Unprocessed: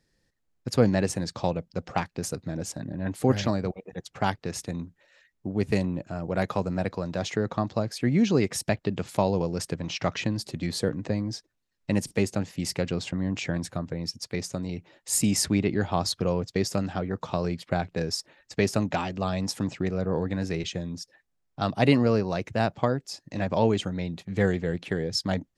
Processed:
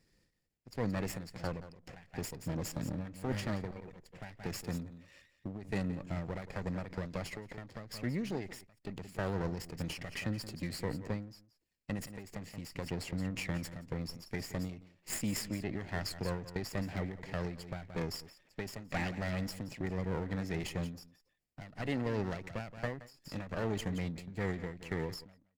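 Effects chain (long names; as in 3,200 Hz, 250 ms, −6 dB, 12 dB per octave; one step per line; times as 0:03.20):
lower of the sound and its delayed copy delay 0.4 ms
dynamic equaliser 1,900 Hz, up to +7 dB, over −55 dBFS, Q 5.9
reversed playback
downward compressor 6 to 1, threshold −33 dBFS, peak gain reduction 17 dB
reversed playback
single-tap delay 174 ms −14 dB
every ending faded ahead of time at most 100 dB per second
level +1 dB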